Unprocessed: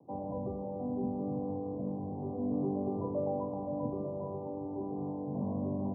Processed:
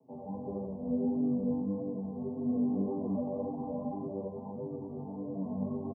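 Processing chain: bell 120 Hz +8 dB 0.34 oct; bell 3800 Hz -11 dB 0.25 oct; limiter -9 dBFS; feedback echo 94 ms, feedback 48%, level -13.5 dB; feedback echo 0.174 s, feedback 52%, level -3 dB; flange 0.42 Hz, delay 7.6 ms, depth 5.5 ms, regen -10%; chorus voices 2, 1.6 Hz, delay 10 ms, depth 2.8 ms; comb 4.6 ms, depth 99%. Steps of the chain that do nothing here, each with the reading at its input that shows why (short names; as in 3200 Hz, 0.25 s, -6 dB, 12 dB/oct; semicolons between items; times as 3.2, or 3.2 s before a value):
bell 3800 Hz: input band ends at 1000 Hz; limiter -9 dBFS: input peak -22.0 dBFS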